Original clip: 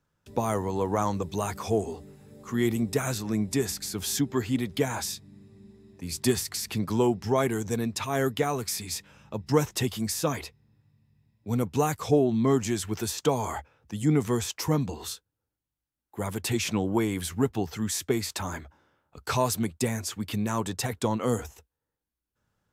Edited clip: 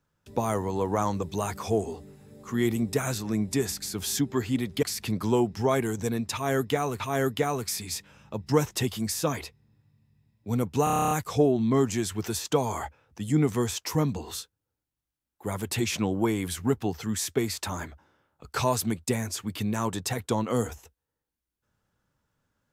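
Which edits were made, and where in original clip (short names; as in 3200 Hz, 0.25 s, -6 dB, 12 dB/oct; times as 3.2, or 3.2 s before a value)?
4.83–6.5 cut
8–8.67 loop, 2 plays
11.84 stutter 0.03 s, 10 plays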